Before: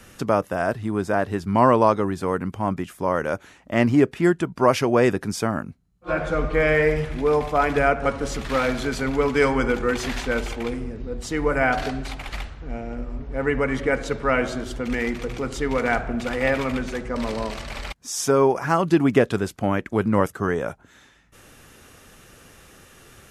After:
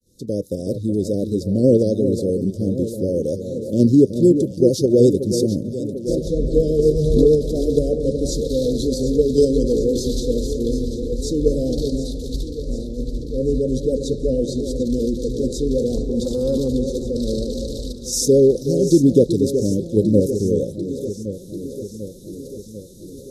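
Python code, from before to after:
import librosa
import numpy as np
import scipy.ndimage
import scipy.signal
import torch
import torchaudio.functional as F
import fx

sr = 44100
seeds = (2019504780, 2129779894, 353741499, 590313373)

p1 = fx.fade_in_head(x, sr, length_s=0.6)
p2 = scipy.signal.sosfilt(scipy.signal.cheby1(5, 1.0, [530.0, 3800.0], 'bandstop', fs=sr, output='sos'), p1)
p3 = fx.level_steps(p2, sr, step_db=10)
p4 = p2 + (p3 * 10.0 ** (3.0 / 20.0))
p5 = fx.vibrato(p4, sr, rate_hz=8.5, depth_cents=40.0)
p6 = fx.transient(p5, sr, attack_db=-4, sustain_db=4, at=(15.95, 16.68))
p7 = p6 + fx.echo_alternate(p6, sr, ms=372, hz=1100.0, feedback_pct=79, wet_db=-9, dry=0)
y = fx.pre_swell(p7, sr, db_per_s=33.0, at=(6.95, 7.56))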